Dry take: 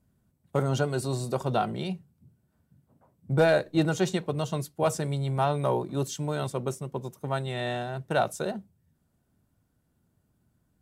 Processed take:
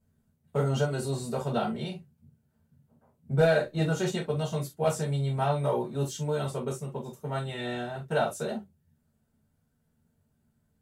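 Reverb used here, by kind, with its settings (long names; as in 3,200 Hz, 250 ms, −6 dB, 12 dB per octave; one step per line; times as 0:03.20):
reverb whose tail is shaped and stops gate 90 ms falling, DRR −6 dB
level −8.5 dB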